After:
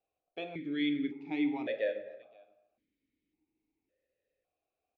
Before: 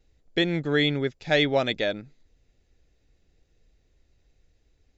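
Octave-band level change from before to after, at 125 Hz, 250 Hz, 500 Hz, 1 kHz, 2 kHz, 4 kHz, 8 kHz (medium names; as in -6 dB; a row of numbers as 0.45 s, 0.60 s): -21.0 dB, -5.0 dB, -11.5 dB, -13.0 dB, -14.0 dB, -17.5 dB, no reading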